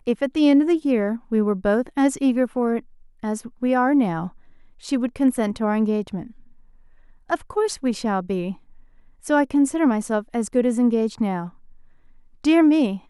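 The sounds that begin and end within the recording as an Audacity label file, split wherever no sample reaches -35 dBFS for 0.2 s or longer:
3.230000	4.280000	sound
4.830000	6.300000	sound
7.300000	8.540000	sound
9.250000	11.490000	sound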